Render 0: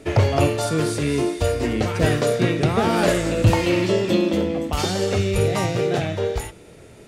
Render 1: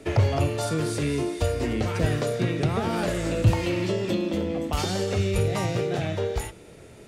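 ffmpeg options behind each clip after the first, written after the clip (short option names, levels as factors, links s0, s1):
-filter_complex "[0:a]acrossover=split=150[s0][s1];[s1]acompressor=threshold=0.0794:ratio=6[s2];[s0][s2]amix=inputs=2:normalize=0,volume=0.794"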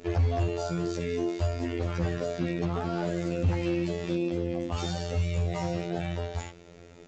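-af "afftfilt=real='hypot(re,im)*cos(PI*b)':imag='0':win_size=2048:overlap=0.75,aresample=16000,asoftclip=type=hard:threshold=0.112,aresample=44100"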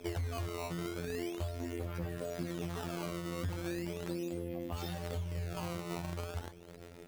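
-af "acompressor=threshold=0.0224:ratio=6,acrusher=samples=15:mix=1:aa=0.000001:lfo=1:lforange=24:lforate=0.38,volume=0.841"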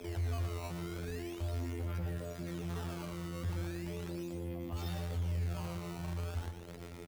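-filter_complex "[0:a]acrossover=split=100[s0][s1];[s1]alimiter=level_in=4.22:limit=0.0631:level=0:latency=1:release=121,volume=0.237[s2];[s0][s2]amix=inputs=2:normalize=0,asoftclip=type=tanh:threshold=0.02,aecho=1:1:117:0.398,volume=1.58"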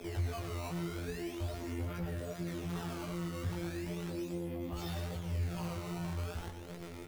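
-af "flanger=delay=17:depth=3:speed=2.5,volume=1.78"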